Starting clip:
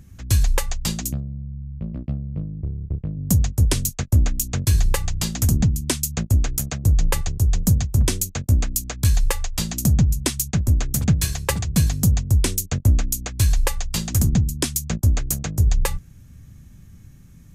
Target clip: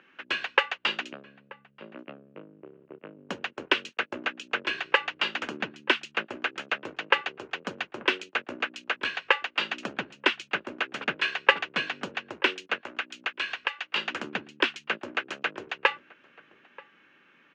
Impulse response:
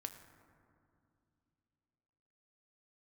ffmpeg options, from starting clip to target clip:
-filter_complex "[0:a]highpass=f=410:w=0.5412,highpass=f=410:w=1.3066,equalizer=f=480:t=q:w=4:g=-4,equalizer=f=700:t=q:w=4:g=-7,equalizer=f=1.5k:t=q:w=4:g=7,equalizer=f=2.8k:t=q:w=4:g=9,lowpass=f=2.9k:w=0.5412,lowpass=f=2.9k:w=1.3066,asplit=2[a][b];[b]adelay=932.9,volume=-21dB,highshelf=f=4k:g=-21[c];[a][c]amix=inputs=2:normalize=0,asettb=1/sr,asplit=3[d][e][f];[d]atrim=end=12.744[g];[e]atrim=start=12.74:end=13.96,asetpts=PTS-STARTPTS,afade=t=in:d=0.004:c=qsin,afade=t=out:st=1.216:d=0.004:c=qsin,acrossover=split=760|1600[h][i][j];[h]acompressor=threshold=-51dB:ratio=4[k];[i]acompressor=threshold=-41dB:ratio=4[l];[j]acompressor=threshold=-33dB:ratio=4[m];[k][l][m]amix=inputs=3:normalize=0[n];[f]atrim=start=13.956[o];[g][n]acrossfade=d=0.004:c1=hsin:c2=qsin[p];[p][o]acrossfade=d=0.004:c1=qsin:c2=hsin,volume=5dB"

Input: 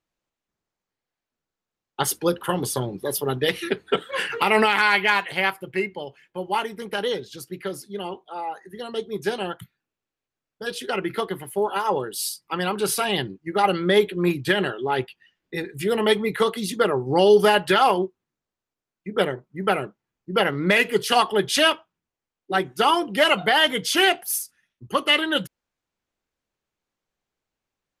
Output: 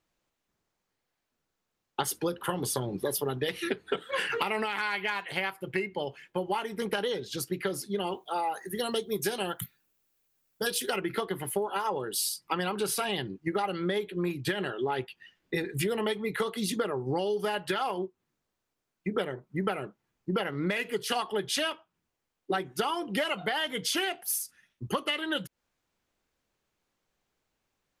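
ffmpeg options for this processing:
-filter_complex "[0:a]asettb=1/sr,asplit=3[a][b][c];[a]atrim=end=8.074[d];[b]atrim=start=8.07:end=11.01,asetpts=PTS-STARTPTS,afade=t=in:d=0.004:c=qsin,afade=t=out:st=2.936:d=0.004:c=qsin,aemphasis=mode=production:type=50fm[e];[c]atrim=start=11.006[f];[d][e]acrossfade=d=0.004:c1=hsin:c2=qsin[g];[g][f]acrossfade=d=0.004:c1=qsin:c2=hsin,acompressor=threshold=-31dB:ratio=16,volume=4.5dB"

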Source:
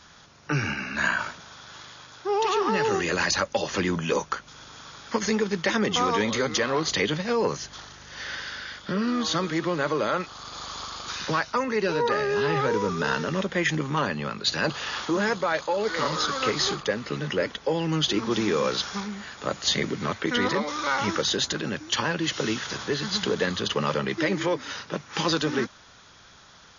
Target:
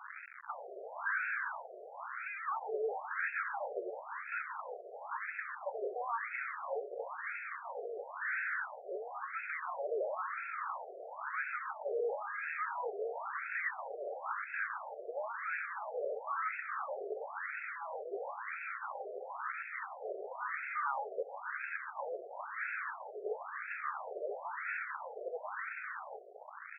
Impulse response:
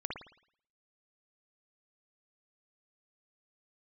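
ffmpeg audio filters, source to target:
-filter_complex "[0:a]acompressor=threshold=-26dB:ratio=6,asplit=2[a][b];[b]aecho=0:1:86|272|336|550:0.158|0.15|0.211|0.126[c];[a][c]amix=inputs=2:normalize=0,asubboost=boost=3:cutoff=71,acrusher=bits=5:dc=4:mix=0:aa=0.000001,asoftclip=type=hard:threshold=-39dB,afftfilt=real='re*between(b*sr/1024,510*pow(1900/510,0.5+0.5*sin(2*PI*0.98*pts/sr))/1.41,510*pow(1900/510,0.5+0.5*sin(2*PI*0.98*pts/sr))*1.41)':imag='im*between(b*sr/1024,510*pow(1900/510,0.5+0.5*sin(2*PI*0.98*pts/sr))/1.41,510*pow(1900/510,0.5+0.5*sin(2*PI*0.98*pts/sr))*1.41)':win_size=1024:overlap=0.75,volume=13dB"

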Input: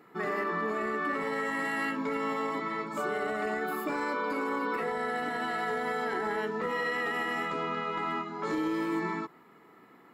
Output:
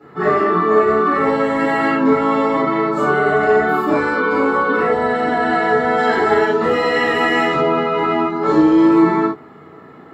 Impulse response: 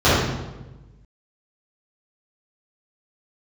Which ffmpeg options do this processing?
-filter_complex "[0:a]asettb=1/sr,asplit=3[a][b][c];[a]atrim=end=5.974[d];[b]atrim=start=5.97:end=7.54,asetpts=PTS-STARTPTS,afade=t=in:d=0.004:c=qsin,afade=t=out:st=1.566:d=0.004:c=qsin,highshelf=f=2.6k:g=8.5[e];[c]atrim=start=7.536[f];[d][e]acrossfade=d=0.004:c1=hsin:c2=qsin[g];[g][f]acrossfade=d=0.004:c1=qsin:c2=hsin[h];[1:a]atrim=start_sample=2205,atrim=end_sample=4410,asetrate=48510,aresample=44100[i];[h][i]afir=irnorm=-1:irlink=0,volume=-9.5dB"

